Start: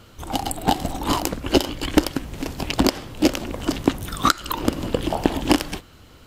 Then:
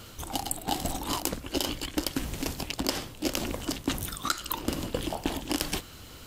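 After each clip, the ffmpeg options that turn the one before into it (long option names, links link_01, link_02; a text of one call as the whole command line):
ffmpeg -i in.wav -af "highshelf=frequency=3700:gain=9.5,areverse,acompressor=threshold=-27dB:ratio=6,areverse" out.wav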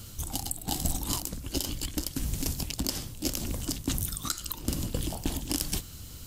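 ffmpeg -i in.wav -af "bass=frequency=250:gain=13,treble=frequency=4000:gain=13,alimiter=limit=-4dB:level=0:latency=1:release=200,volume=-7.5dB" out.wav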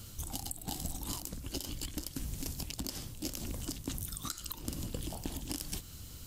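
ffmpeg -i in.wav -af "acompressor=threshold=-30dB:ratio=6,volume=-4dB" out.wav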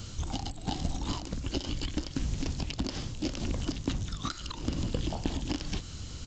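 ffmpeg -i in.wav -filter_complex "[0:a]aresample=16000,aresample=44100,acrossover=split=4500[link_01][link_02];[link_02]acompressor=threshold=-56dB:ratio=4:attack=1:release=60[link_03];[link_01][link_03]amix=inputs=2:normalize=0,volume=8dB" out.wav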